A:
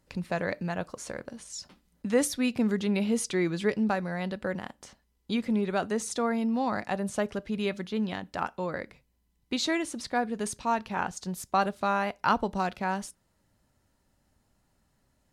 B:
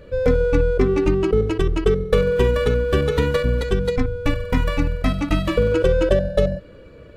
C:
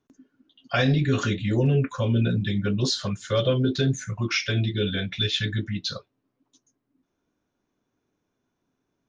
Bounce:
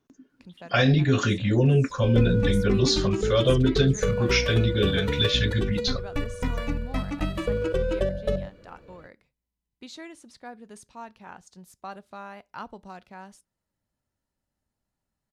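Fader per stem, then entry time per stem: −13.5, −8.5, +1.5 decibels; 0.30, 1.90, 0.00 seconds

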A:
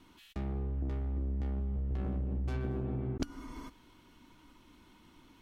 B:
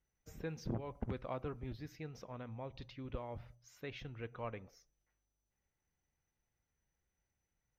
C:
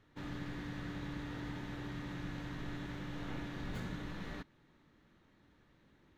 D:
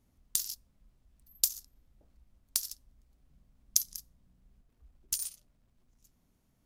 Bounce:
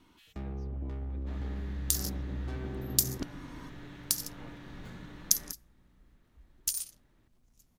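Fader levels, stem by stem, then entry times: −2.5, −14.5, −4.5, +1.5 decibels; 0.00, 0.00, 1.10, 1.55 seconds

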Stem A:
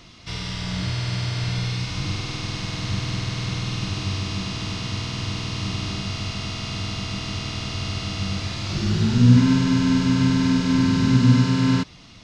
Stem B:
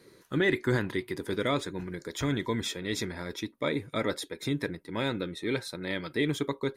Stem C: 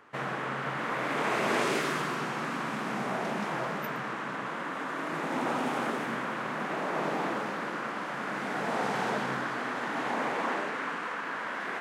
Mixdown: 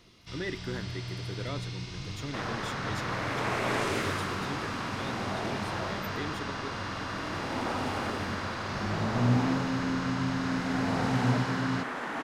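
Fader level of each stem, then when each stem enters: −12.0, −10.0, −2.0 decibels; 0.00, 0.00, 2.20 seconds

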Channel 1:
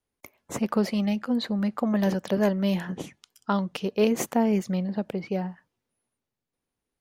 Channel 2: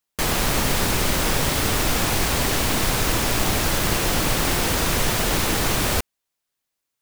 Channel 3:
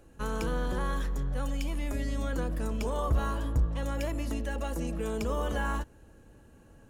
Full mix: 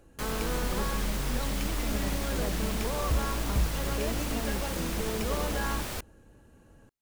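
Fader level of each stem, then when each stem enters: −15.0, −14.5, −1.0 decibels; 0.00, 0.00, 0.00 seconds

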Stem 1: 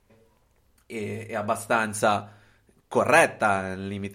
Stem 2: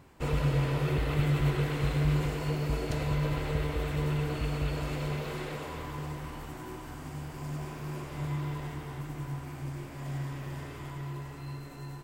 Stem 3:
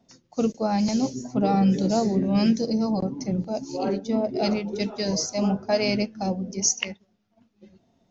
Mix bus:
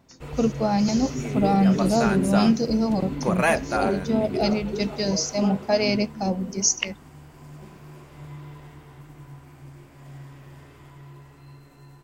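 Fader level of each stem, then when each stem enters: −4.0, −6.5, +1.5 decibels; 0.30, 0.00, 0.00 seconds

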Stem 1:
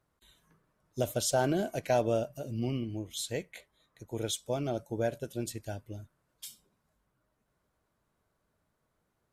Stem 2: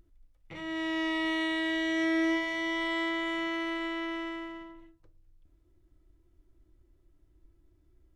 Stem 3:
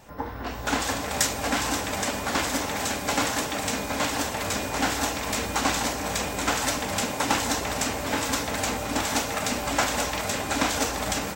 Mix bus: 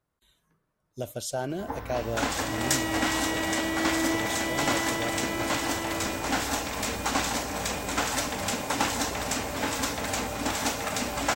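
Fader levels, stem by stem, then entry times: −3.5, −1.0, −2.5 decibels; 0.00, 1.80, 1.50 seconds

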